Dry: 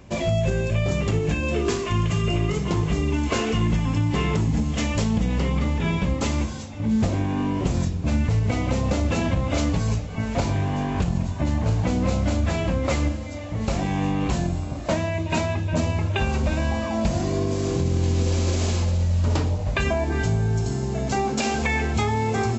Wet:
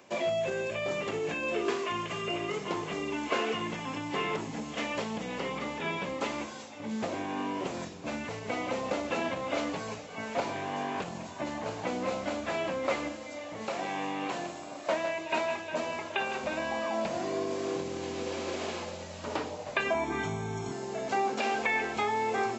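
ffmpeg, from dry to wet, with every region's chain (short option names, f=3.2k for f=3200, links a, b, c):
-filter_complex "[0:a]asettb=1/sr,asplit=3[a][b][c];[a]atrim=end=13.674[d];[b]atrim=start=13.67:end=16.44,asetpts=PTS-STARTPTS,afade=t=in:d=0.004:c=qsin,afade=t=out:st=2.766:d=0.004:c=qsin,lowshelf=f=210:g=-8,aecho=1:1:157:0.266,atrim=end_sample=122157[e];[c]atrim=start=16.436[f];[d][e]acrossfade=d=0.004:c1=hsin:c2=qsin[g];[g][f]acrossfade=d=0.004:c1=qsin:c2=hsin,asettb=1/sr,asplit=3[h][i][j];[h]atrim=end=19.944[k];[i]atrim=start=19.94:end=20.72,asetpts=PTS-STARTPTS,afade=t=in:d=0.004:c=qsin,afade=t=out:st=0.776:d=0.004:c=qsin,asuperstop=centerf=4700:order=12:qfactor=6.8,lowshelf=f=260:g=5.5,aecho=1:1:0.9:0.55,atrim=end_sample=34398[l];[j]atrim=start=20.716[m];[k][l]acrossfade=d=0.004:c1=hsin:c2=qsin[n];[n][m]acrossfade=d=0.004:c1=qsin:c2=hsin,highpass=410,acrossover=split=3500[o][p];[p]acompressor=threshold=-47dB:ratio=4:attack=1:release=60[q];[o][q]amix=inputs=2:normalize=0,volume=-2.5dB"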